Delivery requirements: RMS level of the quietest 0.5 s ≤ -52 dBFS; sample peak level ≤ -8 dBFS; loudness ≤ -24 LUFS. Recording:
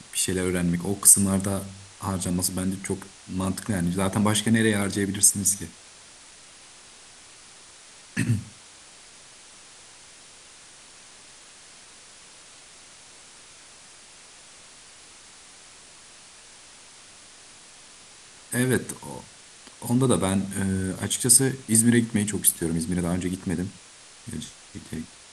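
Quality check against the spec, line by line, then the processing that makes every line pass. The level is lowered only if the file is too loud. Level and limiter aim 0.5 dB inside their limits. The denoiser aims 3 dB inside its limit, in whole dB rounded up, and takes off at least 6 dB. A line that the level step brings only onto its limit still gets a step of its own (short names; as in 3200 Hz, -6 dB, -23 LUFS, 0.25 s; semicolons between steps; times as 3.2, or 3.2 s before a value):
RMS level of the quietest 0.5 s -49 dBFS: fail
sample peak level -1.5 dBFS: fail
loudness -23.0 LUFS: fail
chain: denoiser 6 dB, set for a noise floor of -49 dBFS; gain -1.5 dB; limiter -8.5 dBFS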